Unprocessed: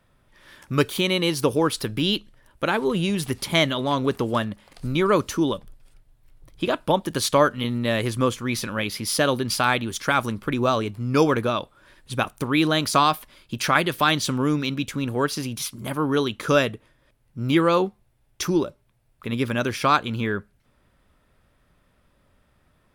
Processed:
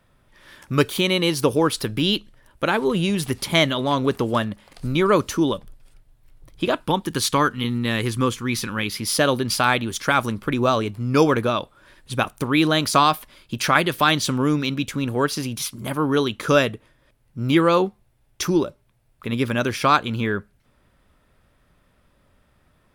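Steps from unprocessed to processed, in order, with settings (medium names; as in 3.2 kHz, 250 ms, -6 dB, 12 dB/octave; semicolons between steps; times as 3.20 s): 6.82–9.02 s: peaking EQ 610 Hz -15 dB 0.32 oct; trim +2 dB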